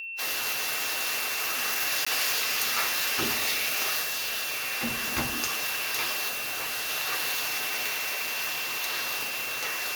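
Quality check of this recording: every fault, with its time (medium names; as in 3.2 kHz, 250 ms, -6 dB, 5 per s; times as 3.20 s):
whine 2.7 kHz -34 dBFS
2.05–2.06 s: dropout 15 ms
4.01–4.63 s: clipped -27 dBFS
6.28–6.90 s: clipped -28.5 dBFS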